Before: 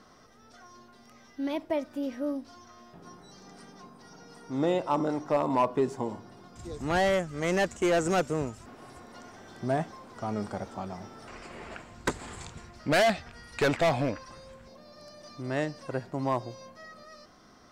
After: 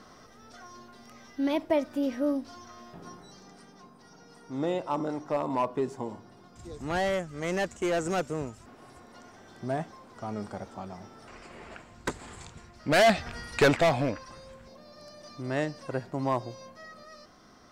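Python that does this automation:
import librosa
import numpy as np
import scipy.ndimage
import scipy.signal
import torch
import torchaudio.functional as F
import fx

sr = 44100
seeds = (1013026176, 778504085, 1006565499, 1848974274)

y = fx.gain(x, sr, db=fx.line((3.02, 4.0), (3.63, -3.0), (12.76, -3.0), (13.33, 9.0), (13.93, 0.5)))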